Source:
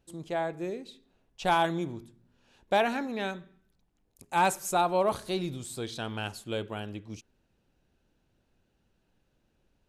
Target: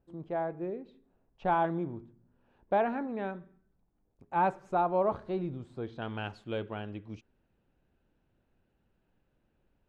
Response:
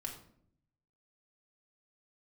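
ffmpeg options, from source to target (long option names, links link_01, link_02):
-af "asetnsamples=nb_out_samples=441:pad=0,asendcmd='6.02 lowpass f 2500',lowpass=1300,volume=-1.5dB"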